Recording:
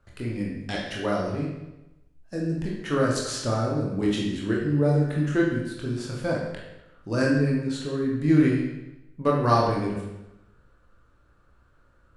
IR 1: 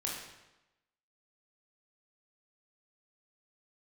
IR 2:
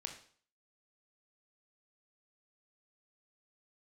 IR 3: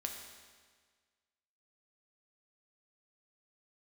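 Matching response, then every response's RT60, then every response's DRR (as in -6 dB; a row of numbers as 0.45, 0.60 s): 1; 0.95, 0.50, 1.6 s; -3.5, 3.0, 2.0 dB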